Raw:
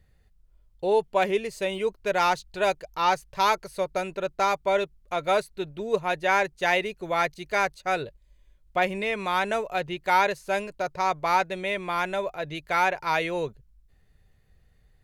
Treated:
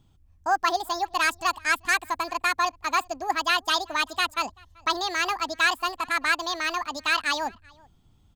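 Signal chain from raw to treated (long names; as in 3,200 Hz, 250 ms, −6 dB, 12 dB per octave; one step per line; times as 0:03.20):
change of speed 1.8×
slap from a distant wall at 66 metres, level −26 dB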